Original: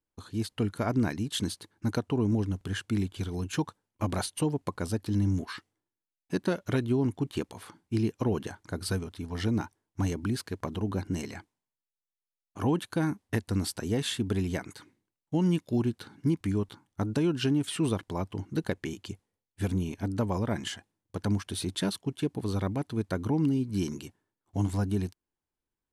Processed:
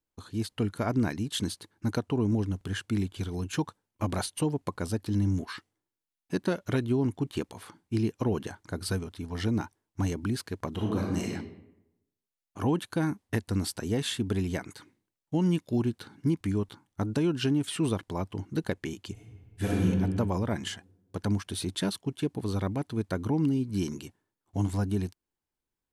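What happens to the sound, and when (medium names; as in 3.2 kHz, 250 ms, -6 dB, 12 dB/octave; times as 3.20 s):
10.74–11.31 s: reverb throw, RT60 0.89 s, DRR -1.5 dB
19.12–19.83 s: reverb throw, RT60 1.6 s, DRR -6 dB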